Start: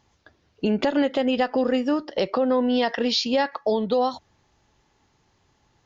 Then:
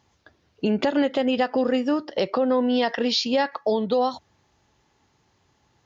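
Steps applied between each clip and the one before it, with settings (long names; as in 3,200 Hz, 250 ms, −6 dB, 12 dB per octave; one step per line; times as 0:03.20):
high-pass filter 55 Hz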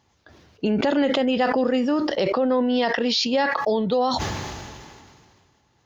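level that may fall only so fast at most 28 dB per second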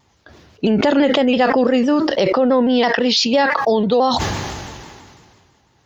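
pitch modulation by a square or saw wave saw down 6 Hz, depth 100 cents
level +6 dB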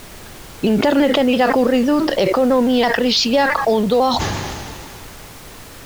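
background noise pink −37 dBFS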